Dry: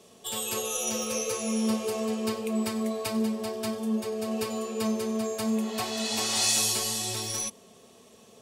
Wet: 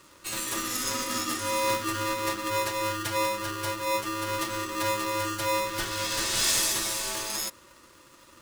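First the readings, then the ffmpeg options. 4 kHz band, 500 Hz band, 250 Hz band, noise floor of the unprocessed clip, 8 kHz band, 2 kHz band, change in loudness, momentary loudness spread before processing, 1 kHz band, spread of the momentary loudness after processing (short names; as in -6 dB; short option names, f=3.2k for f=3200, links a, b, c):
+1.0 dB, -1.0 dB, -7.5 dB, -55 dBFS, 0.0 dB, +7.0 dB, +0.5 dB, 8 LU, +8.0 dB, 7 LU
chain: -af "aeval=exprs='val(0)*sgn(sin(2*PI*760*n/s))':c=same"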